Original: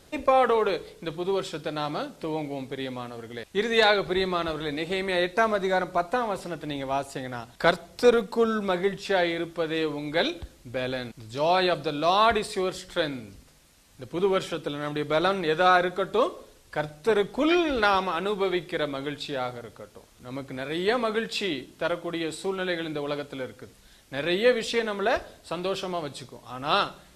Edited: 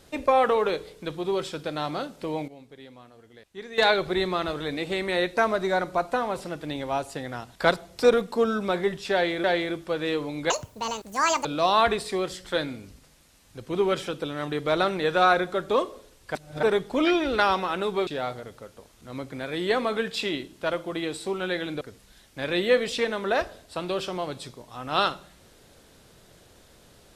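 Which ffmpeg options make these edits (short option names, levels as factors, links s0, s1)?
-filter_complex "[0:a]asplit=10[s0][s1][s2][s3][s4][s5][s6][s7][s8][s9];[s0]atrim=end=2.48,asetpts=PTS-STARTPTS,afade=t=out:st=2.33:d=0.15:c=log:silence=0.211349[s10];[s1]atrim=start=2.48:end=3.78,asetpts=PTS-STARTPTS,volume=0.211[s11];[s2]atrim=start=3.78:end=9.442,asetpts=PTS-STARTPTS,afade=t=in:d=0.15:c=log:silence=0.211349[s12];[s3]atrim=start=9.128:end=10.194[s13];[s4]atrim=start=10.19:end=11.89,asetpts=PTS-STARTPTS,asetrate=78939,aresample=44100[s14];[s5]atrim=start=11.886:end=16.792[s15];[s6]atrim=start=16.788:end=17.072,asetpts=PTS-STARTPTS,areverse[s16];[s7]atrim=start=17.068:end=18.512[s17];[s8]atrim=start=19.248:end=22.992[s18];[s9]atrim=start=23.558[s19];[s10][s11][s12]concat=n=3:v=0:a=1[s20];[s20][s13]acrossfade=d=0.004:c1=hsin:c2=hsin[s21];[s21][s14]acrossfade=d=0.004:c1=hsin:c2=hsin[s22];[s22][s15]acrossfade=d=0.004:c1=hsin:c2=hsin[s23];[s23][s16]acrossfade=d=0.004:c1=hsin:c2=hsin[s24];[s24][s17]acrossfade=d=0.004:c1=hsin:c2=hsin[s25];[s25][s18]acrossfade=d=0.004:c1=hsin:c2=hsin[s26];[s26][s19]acrossfade=d=0.004:c1=hsin:c2=hsin"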